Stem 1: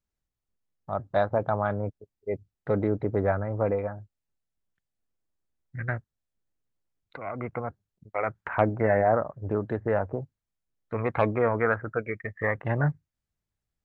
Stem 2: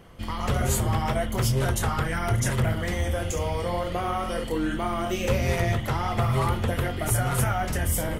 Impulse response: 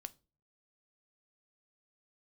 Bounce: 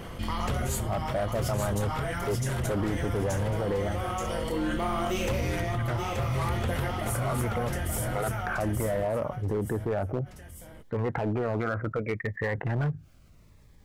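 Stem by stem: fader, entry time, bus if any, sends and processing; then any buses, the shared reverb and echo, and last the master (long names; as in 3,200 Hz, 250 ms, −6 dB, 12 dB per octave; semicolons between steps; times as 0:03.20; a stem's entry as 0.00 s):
+1.5 dB, 0.00 s, no send, no echo send, high-shelf EQ 3,600 Hz −11.5 dB; brickwall limiter −19.5 dBFS, peak gain reduction 10 dB; phaser whose notches keep moving one way falling 0.67 Hz
−6.5 dB, 0.00 s, send −5 dB, echo send −7 dB, automatic ducking −12 dB, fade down 0.45 s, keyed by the first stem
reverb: on, RT60 0.35 s, pre-delay 3 ms
echo: repeating echo 878 ms, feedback 21%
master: gain into a clipping stage and back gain 24.5 dB; envelope flattener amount 50%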